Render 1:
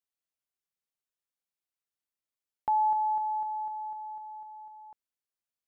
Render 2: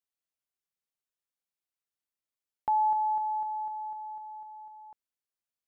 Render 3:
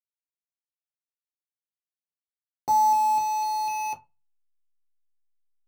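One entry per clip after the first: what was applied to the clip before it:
nothing audible
bit-crush 6-bit; backlash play -56 dBFS; reverb RT60 0.25 s, pre-delay 3 ms, DRR -0.5 dB; gain -4 dB

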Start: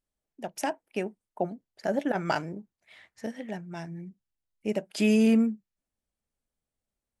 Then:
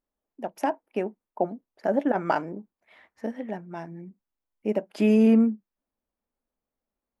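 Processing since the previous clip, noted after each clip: graphic EQ 125/250/500/1000/4000/8000 Hz -7/+7/+4/+7/-4/-10 dB; gain -2 dB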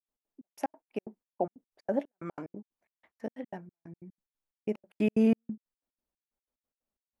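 step gate ".x.xx..x.x" 183 bpm -60 dB; gain -5 dB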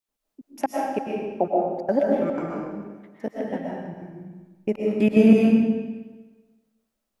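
reverb RT60 1.3 s, pre-delay 85 ms, DRR -3.5 dB; gain +7 dB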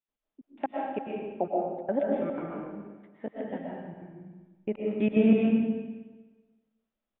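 downsampling 8000 Hz; gain -6.5 dB

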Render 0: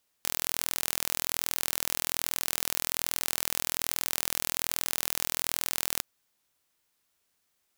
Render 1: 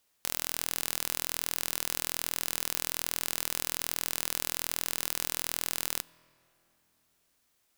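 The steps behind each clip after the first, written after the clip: limiter -6.5 dBFS, peak gain reduction 5 dB; on a send at -20.5 dB: reverb RT60 3.3 s, pre-delay 6 ms; on the sum: gain +2.5 dB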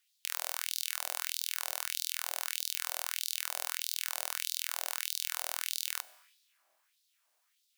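notches 60/120/180/240/300/360/420/480/540 Hz; Schroeder reverb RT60 1.1 s, combs from 31 ms, DRR 18.5 dB; LFO high-pass sine 1.6 Hz 650–4100 Hz; gain -4 dB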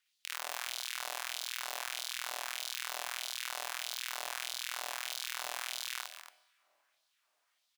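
LPF 3600 Hz 6 dB/oct; loudspeakers at several distances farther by 19 m -2 dB, 67 m -11 dB, 97 m -11 dB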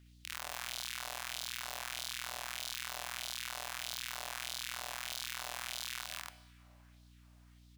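limiter -26.5 dBFS, peak gain reduction 10.5 dB; hum 60 Hz, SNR 17 dB; gain +6.5 dB

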